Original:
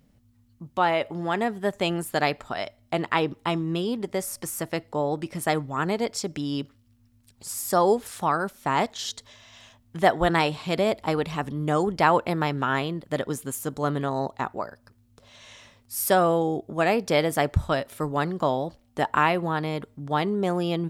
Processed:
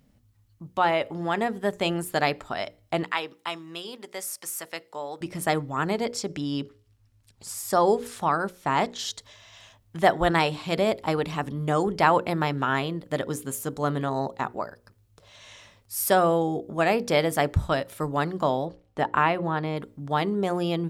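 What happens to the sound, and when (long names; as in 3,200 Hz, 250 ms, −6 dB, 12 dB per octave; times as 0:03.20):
0:03.03–0:05.21: high-pass filter 1,400 Hz 6 dB per octave
0:06.16–0:09.00: high-shelf EQ 12,000 Hz −9 dB
0:18.65–0:19.77: low-pass filter 2,800 Hz 6 dB per octave
whole clip: mains-hum notches 60/120/180/240/300/360/420/480/540 Hz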